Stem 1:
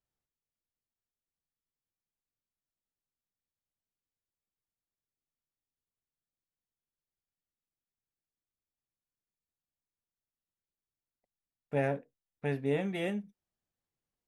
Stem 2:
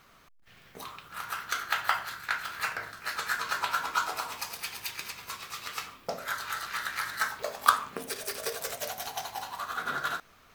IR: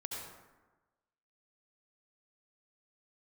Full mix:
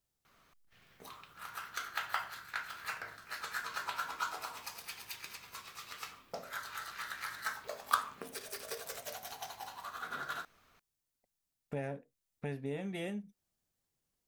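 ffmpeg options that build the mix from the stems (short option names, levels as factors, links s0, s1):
-filter_complex "[0:a]acompressor=threshold=0.00562:ratio=2.5,bass=f=250:g=2,treble=f=4000:g=6,volume=1.41[s0];[1:a]adelay=250,volume=0.376[s1];[s0][s1]amix=inputs=2:normalize=0"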